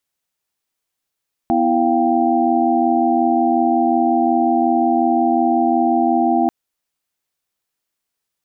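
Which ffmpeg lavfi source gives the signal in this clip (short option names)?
-f lavfi -i "aevalsrc='0.119*(sin(2*PI*246.94*t)+sin(2*PI*329.63*t)+sin(2*PI*698.46*t)+sin(2*PI*783.99*t))':d=4.99:s=44100"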